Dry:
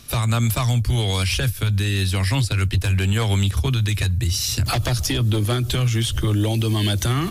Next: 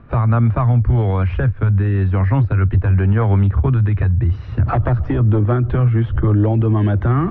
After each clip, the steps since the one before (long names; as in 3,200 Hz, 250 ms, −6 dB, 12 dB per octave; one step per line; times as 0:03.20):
low-pass filter 1,500 Hz 24 dB per octave
level +5.5 dB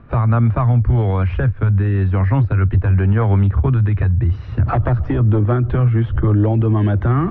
no processing that can be heard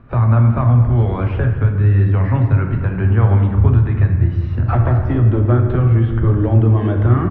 single-tap delay 218 ms −16.5 dB
on a send at −3 dB: convolution reverb RT60 1.4 s, pre-delay 5 ms
on the sum: level −2 dB